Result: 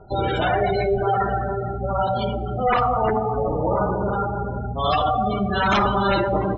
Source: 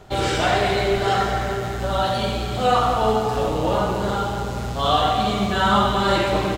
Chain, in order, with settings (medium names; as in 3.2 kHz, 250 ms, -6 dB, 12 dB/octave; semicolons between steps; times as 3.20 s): integer overflow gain 9.5 dB; spectral gate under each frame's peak -15 dB strong; two-slope reverb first 0.44 s, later 2.9 s, from -19 dB, DRR 16.5 dB